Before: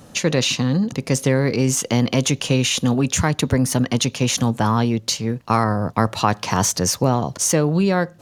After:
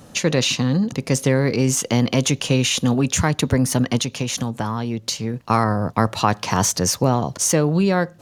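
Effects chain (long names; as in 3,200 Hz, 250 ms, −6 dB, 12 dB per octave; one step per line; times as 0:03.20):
0:03.97–0:05.34: downward compressor, threshold −20 dBFS, peak gain reduction 7.5 dB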